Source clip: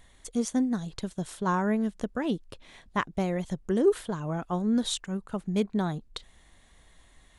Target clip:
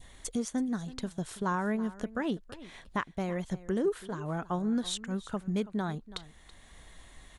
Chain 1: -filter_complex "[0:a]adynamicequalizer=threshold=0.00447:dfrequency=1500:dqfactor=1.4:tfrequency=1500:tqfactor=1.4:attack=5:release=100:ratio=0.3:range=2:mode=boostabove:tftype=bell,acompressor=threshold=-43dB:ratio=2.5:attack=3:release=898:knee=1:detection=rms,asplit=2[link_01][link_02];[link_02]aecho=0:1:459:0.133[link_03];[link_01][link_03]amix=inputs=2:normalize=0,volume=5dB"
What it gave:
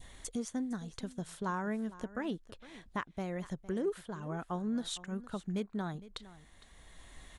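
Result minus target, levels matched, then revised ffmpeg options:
echo 130 ms late; downward compressor: peak gain reduction +5 dB
-filter_complex "[0:a]adynamicequalizer=threshold=0.00447:dfrequency=1500:dqfactor=1.4:tfrequency=1500:tqfactor=1.4:attack=5:release=100:ratio=0.3:range=2:mode=boostabove:tftype=bell,acompressor=threshold=-35dB:ratio=2.5:attack=3:release=898:knee=1:detection=rms,asplit=2[link_01][link_02];[link_02]aecho=0:1:329:0.133[link_03];[link_01][link_03]amix=inputs=2:normalize=0,volume=5dB"

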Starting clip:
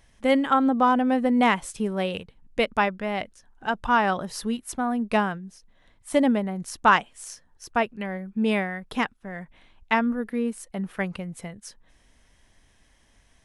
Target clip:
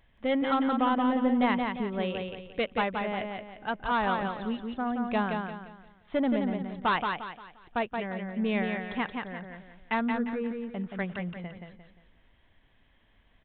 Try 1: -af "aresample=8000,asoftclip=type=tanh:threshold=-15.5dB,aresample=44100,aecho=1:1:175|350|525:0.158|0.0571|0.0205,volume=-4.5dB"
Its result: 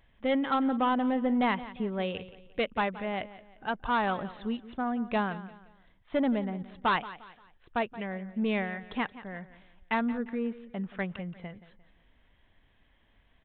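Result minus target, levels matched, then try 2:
echo-to-direct −11.5 dB
-af "aresample=8000,asoftclip=type=tanh:threshold=-15.5dB,aresample=44100,aecho=1:1:175|350|525|700|875:0.596|0.214|0.0772|0.0278|0.01,volume=-4.5dB"

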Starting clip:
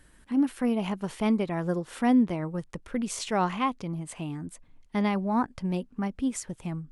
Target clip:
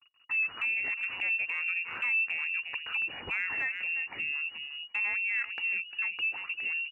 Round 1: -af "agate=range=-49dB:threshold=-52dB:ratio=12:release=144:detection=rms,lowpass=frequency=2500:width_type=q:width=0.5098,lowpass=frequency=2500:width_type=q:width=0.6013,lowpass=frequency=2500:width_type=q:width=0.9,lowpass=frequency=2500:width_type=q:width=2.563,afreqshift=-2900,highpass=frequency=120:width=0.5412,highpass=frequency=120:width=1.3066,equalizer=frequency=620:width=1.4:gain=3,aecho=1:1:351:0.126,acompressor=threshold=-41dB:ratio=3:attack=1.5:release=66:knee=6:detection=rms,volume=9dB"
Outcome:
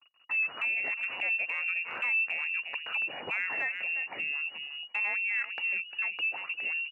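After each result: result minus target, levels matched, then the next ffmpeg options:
500 Hz band +6.5 dB; 125 Hz band −4.0 dB
-af "agate=range=-49dB:threshold=-52dB:ratio=12:release=144:detection=rms,lowpass=frequency=2500:width_type=q:width=0.5098,lowpass=frequency=2500:width_type=q:width=0.6013,lowpass=frequency=2500:width_type=q:width=0.9,lowpass=frequency=2500:width_type=q:width=2.563,afreqshift=-2900,highpass=frequency=120:width=0.5412,highpass=frequency=120:width=1.3066,equalizer=frequency=620:width=1.4:gain=-6.5,aecho=1:1:351:0.126,acompressor=threshold=-41dB:ratio=3:attack=1.5:release=66:knee=6:detection=rms,volume=9dB"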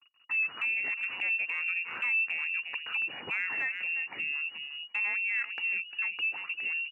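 125 Hz band −3.5 dB
-af "agate=range=-49dB:threshold=-52dB:ratio=12:release=144:detection=rms,lowpass=frequency=2500:width_type=q:width=0.5098,lowpass=frequency=2500:width_type=q:width=0.6013,lowpass=frequency=2500:width_type=q:width=0.9,lowpass=frequency=2500:width_type=q:width=2.563,afreqshift=-2900,highpass=frequency=41:width=0.5412,highpass=frequency=41:width=1.3066,equalizer=frequency=620:width=1.4:gain=-6.5,aecho=1:1:351:0.126,acompressor=threshold=-41dB:ratio=3:attack=1.5:release=66:knee=6:detection=rms,volume=9dB"

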